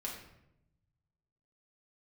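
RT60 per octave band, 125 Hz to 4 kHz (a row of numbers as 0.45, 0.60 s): 1.9, 1.2, 0.90, 0.75, 0.70, 0.55 s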